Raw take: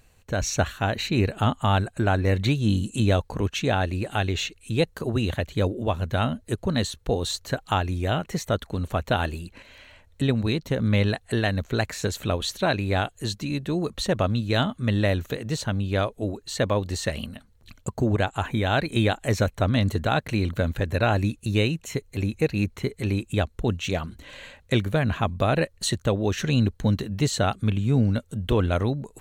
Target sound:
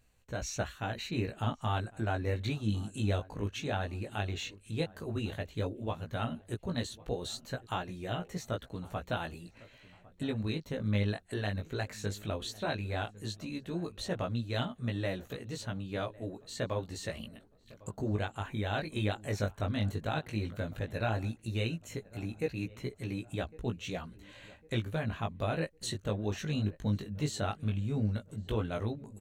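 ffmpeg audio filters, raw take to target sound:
ffmpeg -i in.wav -filter_complex "[0:a]flanger=delay=16.5:depth=3.1:speed=0.13,asplit=2[link_01][link_02];[link_02]adelay=1104,lowpass=frequency=1500:poles=1,volume=-20.5dB,asplit=2[link_03][link_04];[link_04]adelay=1104,lowpass=frequency=1500:poles=1,volume=0.44,asplit=2[link_05][link_06];[link_06]adelay=1104,lowpass=frequency=1500:poles=1,volume=0.44[link_07];[link_03][link_05][link_07]amix=inputs=3:normalize=0[link_08];[link_01][link_08]amix=inputs=2:normalize=0,volume=-8dB" out.wav

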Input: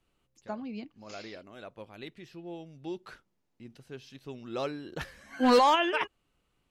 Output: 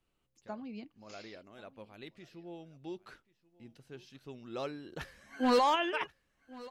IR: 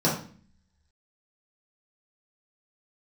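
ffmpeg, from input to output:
-af "aecho=1:1:1084:0.0891,volume=-5dB"

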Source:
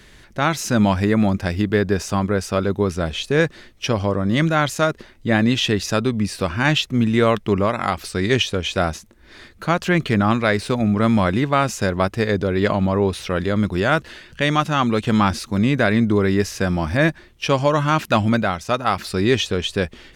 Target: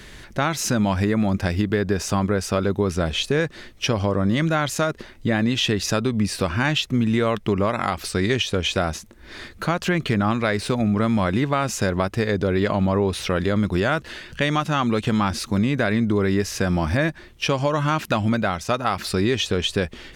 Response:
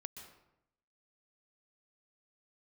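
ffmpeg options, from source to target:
-filter_complex "[0:a]acompressor=threshold=-18dB:ratio=6,asplit=2[link_01][link_02];[link_02]alimiter=limit=-21dB:level=0:latency=1:release=491,volume=2dB[link_03];[link_01][link_03]amix=inputs=2:normalize=0,volume=-2dB"

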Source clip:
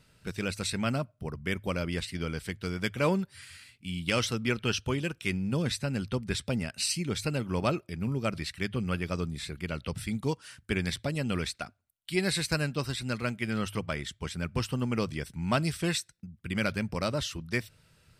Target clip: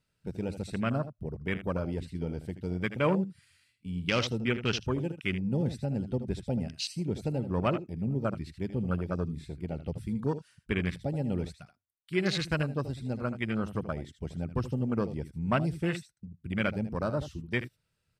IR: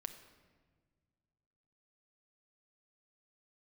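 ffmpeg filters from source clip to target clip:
-af "aecho=1:1:78:0.299,afwtdn=0.0224"

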